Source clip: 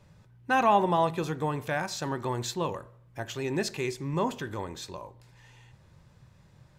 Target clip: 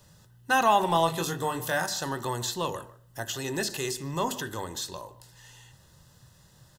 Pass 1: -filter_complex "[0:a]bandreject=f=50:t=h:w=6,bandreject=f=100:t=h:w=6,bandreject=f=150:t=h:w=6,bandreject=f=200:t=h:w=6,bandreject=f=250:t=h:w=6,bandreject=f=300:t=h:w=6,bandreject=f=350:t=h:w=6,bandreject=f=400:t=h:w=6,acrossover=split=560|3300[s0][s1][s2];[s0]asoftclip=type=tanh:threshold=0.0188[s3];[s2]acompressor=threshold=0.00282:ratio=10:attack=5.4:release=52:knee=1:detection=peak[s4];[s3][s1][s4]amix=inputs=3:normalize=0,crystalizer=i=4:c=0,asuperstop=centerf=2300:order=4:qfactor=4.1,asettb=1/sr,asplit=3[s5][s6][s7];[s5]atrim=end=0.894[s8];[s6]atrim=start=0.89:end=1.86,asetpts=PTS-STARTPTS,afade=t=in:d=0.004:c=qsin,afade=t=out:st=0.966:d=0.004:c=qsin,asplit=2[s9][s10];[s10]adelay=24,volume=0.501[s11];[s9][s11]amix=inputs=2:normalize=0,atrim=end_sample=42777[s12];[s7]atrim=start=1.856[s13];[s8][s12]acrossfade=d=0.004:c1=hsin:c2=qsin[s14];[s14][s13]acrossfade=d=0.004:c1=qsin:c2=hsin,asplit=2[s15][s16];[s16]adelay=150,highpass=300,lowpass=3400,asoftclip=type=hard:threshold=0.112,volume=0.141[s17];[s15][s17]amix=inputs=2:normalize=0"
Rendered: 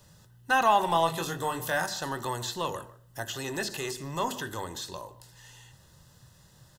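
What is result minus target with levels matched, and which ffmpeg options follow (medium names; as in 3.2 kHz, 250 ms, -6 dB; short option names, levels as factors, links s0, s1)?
compression: peak gain reduction +6 dB; saturation: distortion +8 dB
-filter_complex "[0:a]bandreject=f=50:t=h:w=6,bandreject=f=100:t=h:w=6,bandreject=f=150:t=h:w=6,bandreject=f=200:t=h:w=6,bandreject=f=250:t=h:w=6,bandreject=f=300:t=h:w=6,bandreject=f=350:t=h:w=6,bandreject=f=400:t=h:w=6,acrossover=split=560|3300[s0][s1][s2];[s0]asoftclip=type=tanh:threshold=0.0447[s3];[s2]acompressor=threshold=0.00596:ratio=10:attack=5.4:release=52:knee=1:detection=peak[s4];[s3][s1][s4]amix=inputs=3:normalize=0,crystalizer=i=4:c=0,asuperstop=centerf=2300:order=4:qfactor=4.1,asettb=1/sr,asplit=3[s5][s6][s7];[s5]atrim=end=0.894[s8];[s6]atrim=start=0.89:end=1.86,asetpts=PTS-STARTPTS,afade=t=in:d=0.004:c=qsin,afade=t=out:st=0.966:d=0.004:c=qsin,asplit=2[s9][s10];[s10]adelay=24,volume=0.501[s11];[s9][s11]amix=inputs=2:normalize=0,atrim=end_sample=42777[s12];[s7]atrim=start=1.856[s13];[s8][s12]acrossfade=d=0.004:c1=hsin:c2=qsin[s14];[s14][s13]acrossfade=d=0.004:c1=qsin:c2=hsin,asplit=2[s15][s16];[s16]adelay=150,highpass=300,lowpass=3400,asoftclip=type=hard:threshold=0.112,volume=0.141[s17];[s15][s17]amix=inputs=2:normalize=0"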